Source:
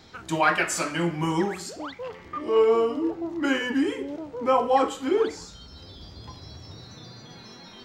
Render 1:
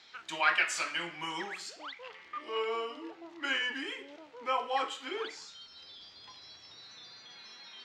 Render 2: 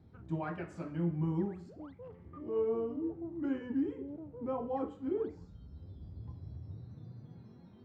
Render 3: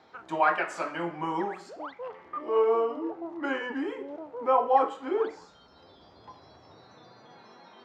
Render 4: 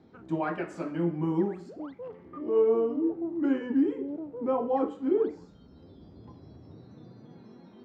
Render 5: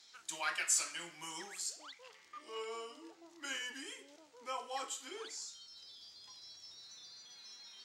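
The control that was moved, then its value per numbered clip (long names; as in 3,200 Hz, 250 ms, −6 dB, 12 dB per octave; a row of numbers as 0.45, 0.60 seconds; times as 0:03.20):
resonant band-pass, frequency: 2,800, 100, 830, 260, 7,900 Hertz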